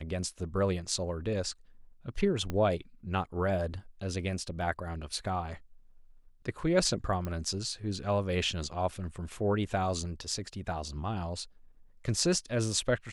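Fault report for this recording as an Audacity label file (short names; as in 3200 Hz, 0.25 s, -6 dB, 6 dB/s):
2.500000	2.500000	pop -20 dBFS
7.250000	7.250000	pop -23 dBFS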